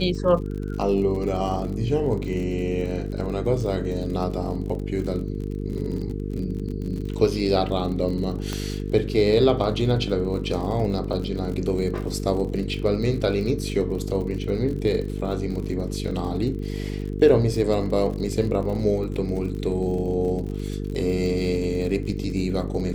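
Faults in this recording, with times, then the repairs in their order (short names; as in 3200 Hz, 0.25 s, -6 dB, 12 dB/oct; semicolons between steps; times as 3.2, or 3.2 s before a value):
buzz 50 Hz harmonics 9 -29 dBFS
crackle 56/s -32 dBFS
8.53 pop -14 dBFS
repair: de-click; de-hum 50 Hz, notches 9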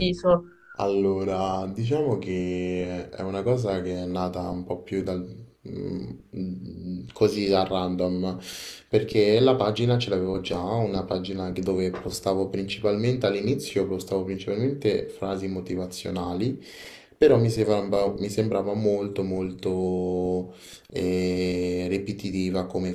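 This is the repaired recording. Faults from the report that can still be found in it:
8.53 pop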